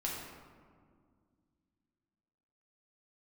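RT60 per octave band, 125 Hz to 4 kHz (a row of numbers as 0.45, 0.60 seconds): 2.9, 3.1, 2.1, 1.8, 1.3, 0.85 seconds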